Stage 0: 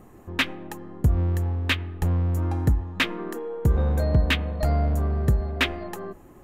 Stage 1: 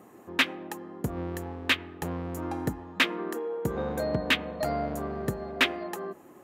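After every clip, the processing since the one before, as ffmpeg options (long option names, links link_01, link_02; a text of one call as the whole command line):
ffmpeg -i in.wav -af "highpass=230" out.wav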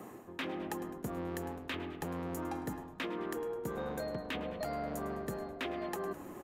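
ffmpeg -i in.wav -filter_complex "[0:a]areverse,acompressor=threshold=-36dB:ratio=6,areverse,asplit=5[link_01][link_02][link_03][link_04][link_05];[link_02]adelay=104,afreqshift=-100,volume=-16dB[link_06];[link_03]adelay=208,afreqshift=-200,volume=-23.7dB[link_07];[link_04]adelay=312,afreqshift=-300,volume=-31.5dB[link_08];[link_05]adelay=416,afreqshift=-400,volume=-39.2dB[link_09];[link_01][link_06][link_07][link_08][link_09]amix=inputs=5:normalize=0,acrossover=split=130|1100[link_10][link_11][link_12];[link_10]acompressor=threshold=-57dB:ratio=4[link_13];[link_11]acompressor=threshold=-41dB:ratio=4[link_14];[link_12]acompressor=threshold=-47dB:ratio=4[link_15];[link_13][link_14][link_15]amix=inputs=3:normalize=0,volume=4.5dB" out.wav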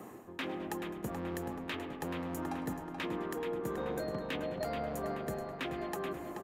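ffmpeg -i in.wav -filter_complex "[0:a]asplit=2[link_01][link_02];[link_02]adelay=430,lowpass=frequency=3800:poles=1,volume=-6dB,asplit=2[link_03][link_04];[link_04]adelay=430,lowpass=frequency=3800:poles=1,volume=0.53,asplit=2[link_05][link_06];[link_06]adelay=430,lowpass=frequency=3800:poles=1,volume=0.53,asplit=2[link_07][link_08];[link_08]adelay=430,lowpass=frequency=3800:poles=1,volume=0.53,asplit=2[link_09][link_10];[link_10]adelay=430,lowpass=frequency=3800:poles=1,volume=0.53,asplit=2[link_11][link_12];[link_12]adelay=430,lowpass=frequency=3800:poles=1,volume=0.53,asplit=2[link_13][link_14];[link_14]adelay=430,lowpass=frequency=3800:poles=1,volume=0.53[link_15];[link_01][link_03][link_05][link_07][link_09][link_11][link_13][link_15]amix=inputs=8:normalize=0" out.wav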